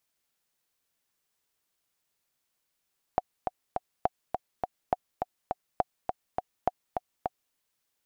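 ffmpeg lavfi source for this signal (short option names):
-f lavfi -i "aevalsrc='pow(10,(-10.5-5*gte(mod(t,3*60/206),60/206))/20)*sin(2*PI*735*mod(t,60/206))*exp(-6.91*mod(t,60/206)/0.03)':d=4.36:s=44100"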